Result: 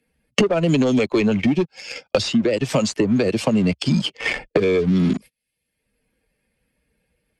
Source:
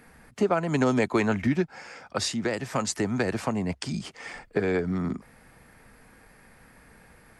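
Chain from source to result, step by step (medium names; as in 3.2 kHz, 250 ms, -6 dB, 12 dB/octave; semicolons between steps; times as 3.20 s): expander on every frequency bin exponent 1.5; high-pass 310 Hz 6 dB/octave; gate -55 dBFS, range -39 dB; high-order bell 1.2 kHz -16 dB; waveshaping leveller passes 2; compression 3:1, threshold -41 dBFS, peak gain reduction 15.5 dB; distance through air 79 m; loudness maximiser +33.5 dB; three bands compressed up and down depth 100%; trim -10.5 dB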